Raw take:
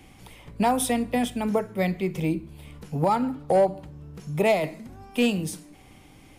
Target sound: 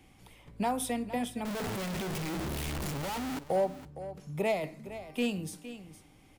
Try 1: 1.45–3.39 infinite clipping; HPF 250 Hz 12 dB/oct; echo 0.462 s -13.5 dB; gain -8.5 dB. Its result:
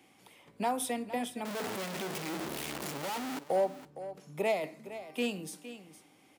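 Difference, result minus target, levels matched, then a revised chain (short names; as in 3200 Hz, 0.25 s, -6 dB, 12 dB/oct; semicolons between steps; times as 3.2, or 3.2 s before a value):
250 Hz band -2.5 dB
1.45–3.39 infinite clipping; echo 0.462 s -13.5 dB; gain -8.5 dB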